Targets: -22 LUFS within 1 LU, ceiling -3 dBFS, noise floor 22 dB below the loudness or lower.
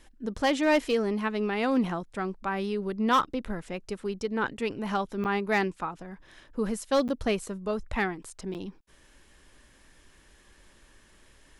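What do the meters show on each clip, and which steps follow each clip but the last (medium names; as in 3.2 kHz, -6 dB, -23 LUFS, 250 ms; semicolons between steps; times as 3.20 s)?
clipped samples 0.3%; clipping level -17.0 dBFS; dropouts 3; longest dropout 8.6 ms; loudness -29.5 LUFS; peak level -17.0 dBFS; loudness target -22.0 LUFS
-> clip repair -17 dBFS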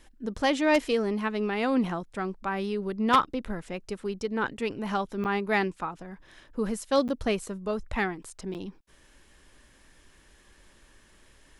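clipped samples 0.0%; dropouts 3; longest dropout 8.6 ms
-> interpolate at 5.24/7.08/8.54 s, 8.6 ms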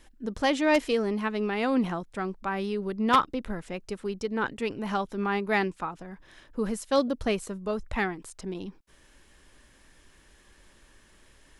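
dropouts 0; loudness -29.0 LUFS; peak level -8.0 dBFS; loudness target -22.0 LUFS
-> trim +7 dB; peak limiter -3 dBFS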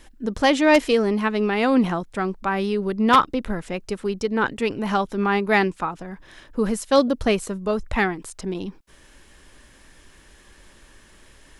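loudness -22.0 LUFS; peak level -3.0 dBFS; noise floor -52 dBFS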